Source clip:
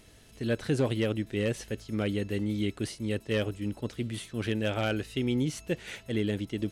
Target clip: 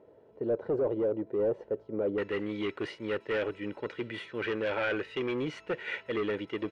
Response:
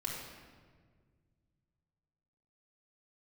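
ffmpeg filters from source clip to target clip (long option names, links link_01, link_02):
-af "highpass=270,aecho=1:1:2.1:0.51,asoftclip=type=hard:threshold=-30dB,asetnsamples=nb_out_samples=441:pad=0,asendcmd='2.18 lowpass f 2100',lowpass=frequency=660:width_type=q:width=1.5,volume=2.5dB"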